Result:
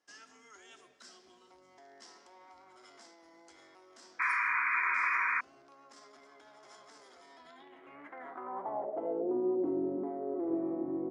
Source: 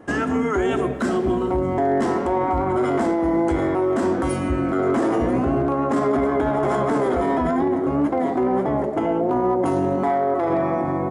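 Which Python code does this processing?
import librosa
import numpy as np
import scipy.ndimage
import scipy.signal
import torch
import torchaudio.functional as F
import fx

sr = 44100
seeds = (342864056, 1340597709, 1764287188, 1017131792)

y = fx.filter_sweep_bandpass(x, sr, from_hz=5200.0, to_hz=340.0, start_s=7.32, end_s=9.4, q=3.6)
y = fx.spec_paint(y, sr, seeds[0], shape='noise', start_s=4.19, length_s=1.22, low_hz=940.0, high_hz=2500.0, level_db=-23.0)
y = F.gain(torch.from_numpy(y), -7.5).numpy()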